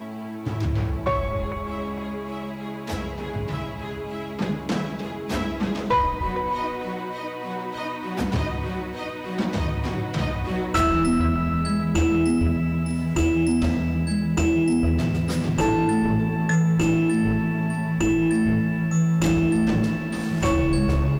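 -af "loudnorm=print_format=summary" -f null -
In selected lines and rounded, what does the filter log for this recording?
Input Integrated:    -23.6 LUFS
Input True Peak:     -13.6 dBTP
Input LRA:             6.8 LU
Input Threshold:     -33.6 LUFS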